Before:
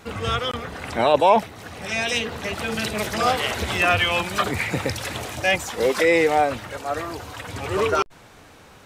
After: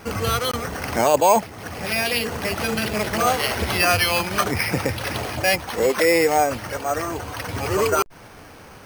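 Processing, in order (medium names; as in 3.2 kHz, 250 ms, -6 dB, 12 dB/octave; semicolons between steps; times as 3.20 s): in parallel at +2 dB: compression, threshold -27 dBFS, peak gain reduction 15.5 dB; on the sum: careless resampling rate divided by 6×, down filtered, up hold; trim -2 dB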